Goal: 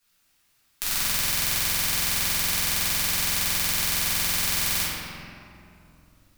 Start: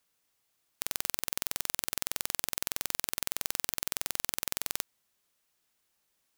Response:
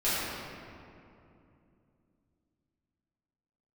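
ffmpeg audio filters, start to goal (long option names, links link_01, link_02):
-filter_complex "[0:a]equalizer=frequency=500:width_type=o:width=1.8:gain=-9.5[link_01];[1:a]atrim=start_sample=2205[link_02];[link_01][link_02]afir=irnorm=-1:irlink=0,volume=2.5dB"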